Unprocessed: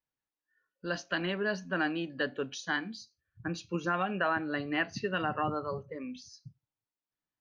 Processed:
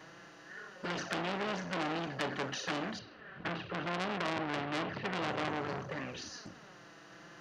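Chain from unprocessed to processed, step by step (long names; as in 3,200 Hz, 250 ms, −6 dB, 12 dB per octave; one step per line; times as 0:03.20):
compressor on every frequency bin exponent 0.4
flanger swept by the level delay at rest 7.1 ms, full sweep at −22.5 dBFS
0:02.99–0:05.22: low-pass filter 3,400 Hz 24 dB per octave
saturating transformer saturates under 3,700 Hz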